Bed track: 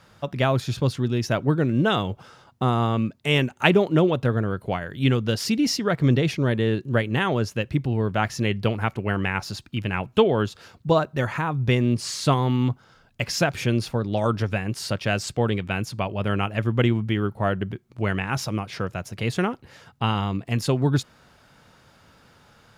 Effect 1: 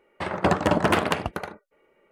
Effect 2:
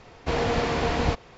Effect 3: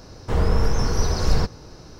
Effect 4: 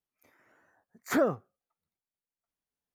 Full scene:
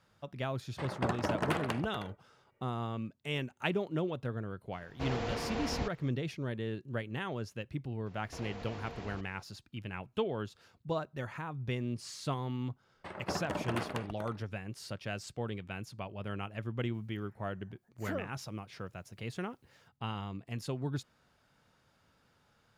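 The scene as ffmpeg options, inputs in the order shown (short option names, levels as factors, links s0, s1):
-filter_complex "[1:a]asplit=2[s0][s1];[2:a]asplit=2[s2][s3];[0:a]volume=0.178[s4];[s3]acompressor=threshold=0.0355:ratio=6:attack=3.2:release=140:knee=1:detection=peak[s5];[4:a]acompressor=mode=upward:threshold=0.00355:ratio=2.5:attack=3.2:release=140:knee=2.83:detection=peak[s6];[s0]atrim=end=2.11,asetpts=PTS-STARTPTS,volume=0.251,afade=t=in:d=0.004:c=hsin,afade=t=out:st=2.106:d=0.004:c=hsin,adelay=580[s7];[s2]atrim=end=1.37,asetpts=PTS-STARTPTS,volume=0.251,afade=t=in:d=0.004:c=hsin,afade=t=out:st=1.366:d=0.004:c=hsin,adelay=208593S[s8];[s5]atrim=end=1.37,asetpts=PTS-STARTPTS,volume=0.224,afade=t=in:d=0.004:c=hsin,afade=t=out:st=1.366:d=0.004:c=hsin,adelay=8060[s9];[s1]atrim=end=2.11,asetpts=PTS-STARTPTS,volume=0.168,afade=t=in:d=0.004:c=hsin,afade=t=out:st=2.106:d=0.004:c=hsin,adelay=566244S[s10];[s6]atrim=end=2.94,asetpts=PTS-STARTPTS,volume=0.224,afade=t=in:d=0.004:c=hsin,afade=t=out:st=2.936:d=0.004:c=hsin,adelay=16940[s11];[s4][s7][s8][s9][s10][s11]amix=inputs=6:normalize=0"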